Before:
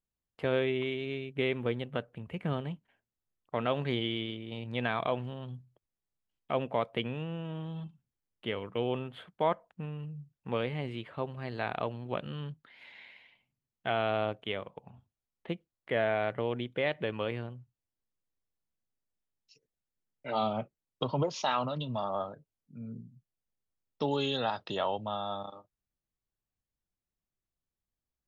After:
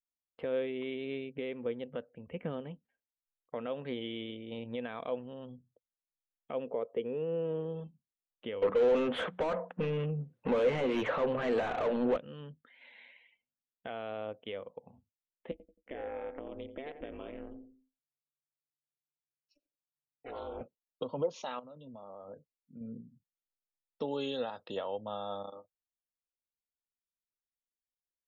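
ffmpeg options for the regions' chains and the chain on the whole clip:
ffmpeg -i in.wav -filter_complex "[0:a]asettb=1/sr,asplit=3[link_01][link_02][link_03];[link_01]atrim=end=6.674[link_04];[link_02]atrim=start=6.67:end=7.84,asetpts=PTS-STARTPTS,afade=type=in:duration=0.004:curve=qsin,afade=type=out:start_time=1.166:duration=0.004:curve=qsin,lowpass=frequency=2800:poles=1,equalizer=frequency=420:width_type=o:width=0.48:gain=14[link_05];[link_03]atrim=start=7.836[link_06];[link_04][link_05]acrossfade=duration=0.004:curve1=hsin:curve2=qsin[link_07];[link_07][link_06]acrossfade=duration=0.004:curve1=qsin:curve2=hsin,asettb=1/sr,asplit=3[link_08][link_09][link_10];[link_08]atrim=end=8.624[link_11];[link_09]atrim=start=8.62:end=12.17,asetpts=PTS-STARTPTS,afade=type=in:duration=0.004:curve=qsin,afade=type=out:start_time=3.546:duration=0.004:curve=qsin,bandreject=frequency=60:width_type=h:width=6,bandreject=frequency=120:width_type=h:width=6,bandreject=frequency=180:width_type=h:width=6,asplit=2[link_12][link_13];[link_13]highpass=frequency=720:poles=1,volume=37dB,asoftclip=type=tanh:threshold=-16dB[link_14];[link_12][link_14]amix=inputs=2:normalize=0,lowpass=frequency=1400:poles=1,volume=-6dB[link_15];[link_10]atrim=start=12.166[link_16];[link_11][link_15]acrossfade=duration=0.004:curve1=hsin:curve2=qsin[link_17];[link_17][link_16]acrossfade=duration=0.004:curve1=qsin:curve2=hsin,asettb=1/sr,asplit=3[link_18][link_19][link_20];[link_18]atrim=end=15.514[link_21];[link_19]atrim=start=15.51:end=20.61,asetpts=PTS-STARTPTS,afade=type=in:duration=0.004:curve=qsin,afade=type=out:start_time=5.096:duration=0.004:curve=qsin,acompressor=threshold=-38dB:ratio=3:attack=3.2:release=140:knee=1:detection=peak,aeval=exprs='val(0)*sin(2*PI*140*n/s)':channel_layout=same,asplit=2[link_22][link_23];[link_23]adelay=88,lowpass=frequency=1900:poles=1,volume=-9dB,asplit=2[link_24][link_25];[link_25]adelay=88,lowpass=frequency=1900:poles=1,volume=0.39,asplit=2[link_26][link_27];[link_27]adelay=88,lowpass=frequency=1900:poles=1,volume=0.39,asplit=2[link_28][link_29];[link_29]adelay=88,lowpass=frequency=1900:poles=1,volume=0.39[link_30];[link_22][link_24][link_26][link_28][link_30]amix=inputs=5:normalize=0,atrim=end_sample=224910[link_31];[link_20]atrim=start=20.606[link_32];[link_21][link_31]acrossfade=duration=0.004:curve1=hsin:curve2=qsin[link_33];[link_33][link_32]acrossfade=duration=0.004:curve1=qsin:curve2=hsin,asettb=1/sr,asplit=3[link_34][link_35][link_36];[link_34]atrim=end=21.594[link_37];[link_35]atrim=start=21.59:end=22.81,asetpts=PTS-STARTPTS,afade=type=in:duration=0.004:curve=qsin,afade=type=out:start_time=1.216:duration=0.004:curve=qsin,equalizer=frequency=4500:width_type=o:width=2.8:gain=-7,acompressor=threshold=-42dB:ratio=16:attack=3.2:release=140:knee=1:detection=peak[link_38];[link_36]atrim=start=22.806[link_39];[link_37][link_38]acrossfade=duration=0.004:curve1=hsin:curve2=qsin[link_40];[link_40][link_39]acrossfade=duration=0.004:curve1=qsin:curve2=hsin,alimiter=level_in=1dB:limit=-24dB:level=0:latency=1:release=490,volume=-1dB,afftdn=noise_reduction=16:noise_floor=-62,equalizer=frequency=125:width_type=o:width=0.33:gain=-8,equalizer=frequency=250:width_type=o:width=0.33:gain=6,equalizer=frequency=500:width_type=o:width=0.33:gain=11,equalizer=frequency=5000:width_type=o:width=0.33:gain=-8,volume=-3.5dB" out.wav

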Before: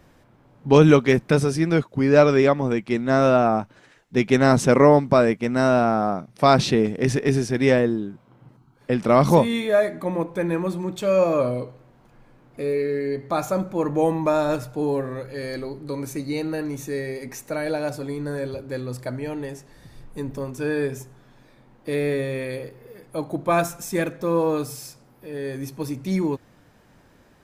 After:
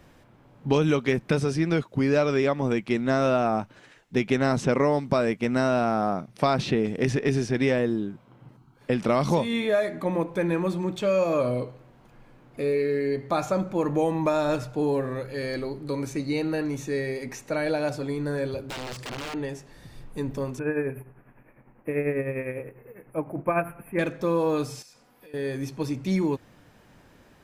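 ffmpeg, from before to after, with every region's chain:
ffmpeg -i in.wav -filter_complex "[0:a]asettb=1/sr,asplit=3[link_01][link_02][link_03];[link_01]atrim=end=18.704[link_04];[link_02]atrim=start=18.7:end=19.34,asetpts=PTS-STARTPTS,afade=type=in:duration=0.004:curve=qsin,afade=type=out:start_time=0.636:duration=0.004:curve=qsin,highshelf=frequency=2000:gain=10,acompressor=threshold=-31dB:ratio=2.5:attack=3.2:release=140:knee=1:detection=peak,aeval=exprs='(mod(28.2*val(0)+1,2)-1)/28.2':channel_layout=same[link_05];[link_03]atrim=start=19.336[link_06];[link_04][link_05]acrossfade=duration=0.004:curve1=hsin:curve2=qsin[link_07];[link_07][link_06]acrossfade=duration=0.004:curve1=qsin:curve2=hsin,asettb=1/sr,asplit=3[link_08][link_09][link_10];[link_08]atrim=end=20.594[link_11];[link_09]atrim=start=20.59:end=23.99,asetpts=PTS-STARTPTS,afade=type=in:duration=0.004:curve=qsin,afade=type=out:start_time=3.396:duration=0.004:curve=qsin,asuperstop=centerf=5400:order=12:qfactor=0.72,tremolo=f=10:d=0.6[link_12];[link_10]atrim=start=23.986[link_13];[link_11][link_12]acrossfade=duration=0.004:curve1=hsin:curve2=qsin[link_14];[link_14][link_13]acrossfade=duration=0.004:curve1=qsin:curve2=hsin,asettb=1/sr,asplit=3[link_15][link_16][link_17];[link_15]atrim=end=24.824[link_18];[link_16]atrim=start=24.82:end=25.34,asetpts=PTS-STARTPTS,afade=type=in:duration=0.004:curve=qsin,afade=type=out:start_time=0.516:duration=0.004:curve=qsin,lowshelf=frequency=430:gain=-11,aecho=1:1:4.1:0.38,atrim=end_sample=22932,acompressor=threshold=-47dB:ratio=5:attack=3.2:release=140:knee=1:detection=peak[link_19];[link_17]atrim=start=25.336[link_20];[link_18][link_19]acrossfade=duration=0.004:curve1=hsin:curve2=qsin[link_21];[link_21][link_20]acrossfade=duration=0.004:curve1=qsin:curve2=hsin,equalizer=frequency=2800:width_type=o:width=0.77:gain=2.5,acrossover=split=3000|7900[link_22][link_23][link_24];[link_22]acompressor=threshold=-20dB:ratio=4[link_25];[link_23]acompressor=threshold=-40dB:ratio=4[link_26];[link_24]acompressor=threshold=-59dB:ratio=4[link_27];[link_25][link_26][link_27]amix=inputs=3:normalize=0" out.wav

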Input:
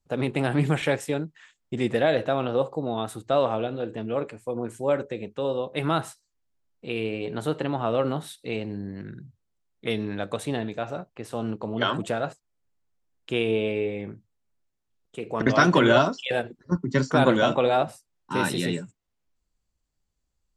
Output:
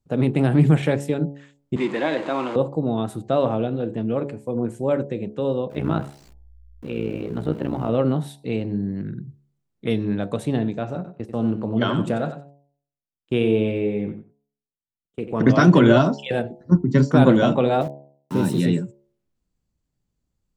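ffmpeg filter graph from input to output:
ffmpeg -i in.wav -filter_complex "[0:a]asettb=1/sr,asplit=3[link_01][link_02][link_03];[link_01]atrim=end=1.764[link_04];[link_02]atrim=start=1.76:end=2.56,asetpts=PTS-STARTPTS,afade=type=in:duration=0.004:curve=qsin,afade=type=out:start_time=0.796:duration=0.004:curve=qsin,aeval=exprs='val(0)+0.5*0.0282*sgn(val(0))':channel_layout=same,highpass=frequency=230:width=0.5412,highpass=frequency=230:width=1.3066,equalizer=frequency=230:width_type=q:width=4:gain=-9,equalizer=frequency=460:width_type=q:width=4:gain=-8,equalizer=frequency=650:width_type=q:width=4:gain=-6,equalizer=frequency=1000:width_type=q:width=4:gain=9,equalizer=frequency=2200:width_type=q:width=4:gain=5,equalizer=frequency=5600:width_type=q:width=4:gain=-9,lowpass=frequency=7200:width=0.5412,lowpass=frequency=7200:width=1.3066[link_05];[link_03]atrim=start=2.556[link_06];[link_04][link_05]acrossfade=duration=0.004:curve1=hsin:curve2=qsin[link_07];[link_07][link_06]acrossfade=duration=0.004:curve1=qsin:curve2=hsin,asettb=1/sr,asplit=3[link_08][link_09][link_10];[link_08]atrim=end=5.704[link_11];[link_09]atrim=start=5.7:end=7.89,asetpts=PTS-STARTPTS,afade=type=in:duration=0.004:curve=qsin,afade=type=out:start_time=2.186:duration=0.004:curve=qsin,aeval=exprs='val(0)+0.5*0.0133*sgn(val(0))':channel_layout=same,acrossover=split=3700[link_12][link_13];[link_13]acompressor=threshold=-53dB:ratio=4:attack=1:release=60[link_14];[link_12][link_14]amix=inputs=2:normalize=0,tremolo=f=61:d=0.889[link_15];[link_10]atrim=start=7.886[link_16];[link_11][link_15]acrossfade=duration=0.004:curve1=hsin:curve2=qsin[link_17];[link_17][link_16]acrossfade=duration=0.004:curve1=qsin:curve2=hsin,asettb=1/sr,asplit=3[link_18][link_19][link_20];[link_18]atrim=end=10.954[link_21];[link_19]atrim=start=10.95:end=15.52,asetpts=PTS-STARTPTS,afade=type=in:duration=0.004:curve=qsin,afade=type=out:start_time=4.566:duration=0.004:curve=qsin,agate=range=-23dB:threshold=-39dB:ratio=16:release=100:detection=peak,aecho=1:1:92|184:0.316|0.0474,atrim=end_sample=201537[link_22];[link_20]atrim=start=15.516[link_23];[link_21][link_22]acrossfade=duration=0.004:curve1=hsin:curve2=qsin[link_24];[link_24][link_23]acrossfade=duration=0.004:curve1=qsin:curve2=hsin,asettb=1/sr,asplit=3[link_25][link_26][link_27];[link_25]atrim=end=17.814[link_28];[link_26]atrim=start=17.81:end=18.6,asetpts=PTS-STARTPTS,afade=type=in:duration=0.004:curve=qsin,afade=type=out:start_time=0.786:duration=0.004:curve=qsin,equalizer=frequency=1800:width_type=o:width=1.9:gain=-9,aeval=exprs='val(0)*gte(abs(val(0)),0.015)':channel_layout=same[link_29];[link_27]atrim=start=18.596[link_30];[link_28][link_29]acrossfade=duration=0.004:curve1=hsin:curve2=qsin[link_31];[link_31][link_30]acrossfade=duration=0.004:curve1=qsin:curve2=hsin,equalizer=frequency=170:width_type=o:width=2.9:gain=12.5,bandreject=frequency=70.78:width_type=h:width=4,bandreject=frequency=141.56:width_type=h:width=4,bandreject=frequency=212.34:width_type=h:width=4,bandreject=frequency=283.12:width_type=h:width=4,bandreject=frequency=353.9:width_type=h:width=4,bandreject=frequency=424.68:width_type=h:width=4,bandreject=frequency=495.46:width_type=h:width=4,bandreject=frequency=566.24:width_type=h:width=4,bandreject=frequency=637.02:width_type=h:width=4,bandreject=frequency=707.8:width_type=h:width=4,bandreject=frequency=778.58:width_type=h:width=4,bandreject=frequency=849.36:width_type=h:width=4,bandreject=frequency=920.14:width_type=h:width=4,bandreject=frequency=990.92:width_type=h:width=4,volume=-2.5dB" out.wav

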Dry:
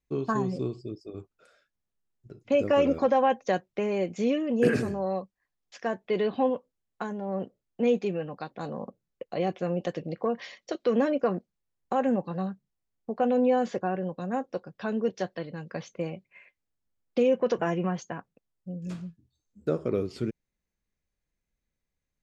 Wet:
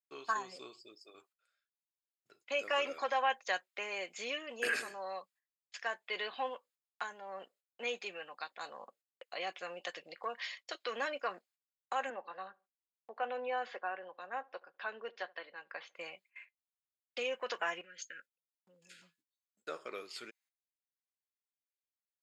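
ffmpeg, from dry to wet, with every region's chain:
ffmpeg -i in.wav -filter_complex "[0:a]asettb=1/sr,asplit=3[link_01][link_02][link_03];[link_01]atrim=end=12.104[link_04];[link_02]atrim=start=12.1:end=15.95,asetpts=PTS-STARTPTS,afade=type=in:duration=0.004:curve=qsin,afade=type=out:start_time=3.846:duration=0.004:curve=qsin,highpass=260,lowpass=4600,aemphasis=mode=reproduction:type=75fm,asplit=2[link_05][link_06];[link_06]adelay=74,lowpass=frequency=990:poles=1,volume=-22dB,asplit=2[link_07][link_08];[link_08]adelay=74,lowpass=frequency=990:poles=1,volume=0.37,asplit=2[link_09][link_10];[link_10]adelay=74,lowpass=frequency=990:poles=1,volume=0.37[link_11];[link_05][link_07][link_09][link_11]amix=inputs=4:normalize=0,atrim=end_sample=169785[link_12];[link_03]atrim=start=15.946[link_13];[link_04][link_12]acrossfade=duration=0.004:curve1=hsin:curve2=qsin[link_14];[link_14][link_13]acrossfade=duration=0.004:curve1=qsin:curve2=hsin,asettb=1/sr,asplit=3[link_15][link_16][link_17];[link_15]atrim=end=17.814[link_18];[link_16]atrim=start=17.81:end=19.02,asetpts=PTS-STARTPTS,afade=type=in:duration=0.004:curve=qsin,afade=type=out:start_time=1.206:duration=0.004:curve=qsin,agate=range=-33dB:threshold=-55dB:ratio=3:release=100:detection=peak,asuperstop=centerf=880:order=20:qfactor=1.1,acompressor=threshold=-37dB:ratio=10:attack=3.2:release=140:knee=1:detection=peak[link_19];[link_17]atrim=start=19.016[link_20];[link_18][link_19]acrossfade=duration=0.004:curve1=hsin:curve2=qsin[link_21];[link_21][link_20]acrossfade=duration=0.004:curve1=qsin:curve2=hsin,bandreject=frequency=5800:width=7.3,agate=range=-19dB:threshold=-53dB:ratio=16:detection=peak,highpass=1400,volume=2.5dB" out.wav

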